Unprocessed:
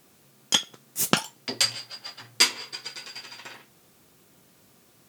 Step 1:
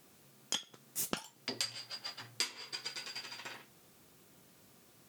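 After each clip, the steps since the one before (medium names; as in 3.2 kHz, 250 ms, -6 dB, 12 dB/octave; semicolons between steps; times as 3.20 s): compression 4:1, threshold -31 dBFS, peak gain reduction 14.5 dB; trim -4 dB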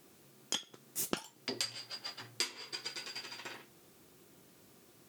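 peaking EQ 350 Hz +5.5 dB 0.64 oct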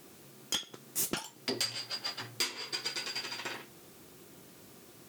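saturation -31 dBFS, distortion -9 dB; trim +7 dB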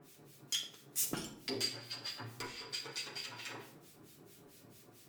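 harmonic tremolo 4.5 Hz, depth 100%, crossover 1.7 kHz; on a send at -1.5 dB: reverberation RT60 0.70 s, pre-delay 7 ms; on the sum: trim -3 dB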